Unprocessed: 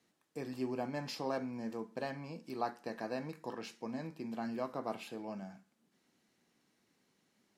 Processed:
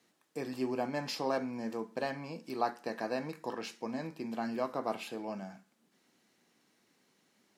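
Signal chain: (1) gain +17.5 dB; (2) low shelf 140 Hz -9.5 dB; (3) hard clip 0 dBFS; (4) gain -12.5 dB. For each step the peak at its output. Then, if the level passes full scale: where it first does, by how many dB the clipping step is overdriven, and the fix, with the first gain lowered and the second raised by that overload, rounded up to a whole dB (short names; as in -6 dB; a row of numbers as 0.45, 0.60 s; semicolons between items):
-4.5, -5.0, -5.0, -17.5 dBFS; no overload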